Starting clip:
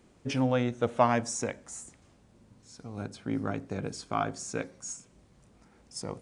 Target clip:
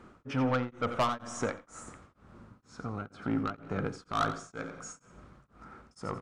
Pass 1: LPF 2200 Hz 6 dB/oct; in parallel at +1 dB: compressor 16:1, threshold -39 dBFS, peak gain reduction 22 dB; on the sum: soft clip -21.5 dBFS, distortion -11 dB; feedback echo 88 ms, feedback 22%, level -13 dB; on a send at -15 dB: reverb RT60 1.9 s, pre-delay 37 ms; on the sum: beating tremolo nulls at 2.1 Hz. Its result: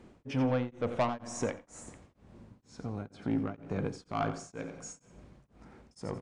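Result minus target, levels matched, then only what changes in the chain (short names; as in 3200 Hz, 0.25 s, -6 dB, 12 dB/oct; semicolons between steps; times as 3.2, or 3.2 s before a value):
1000 Hz band -3.0 dB
add after LPF: bell 1300 Hz +15 dB 0.52 oct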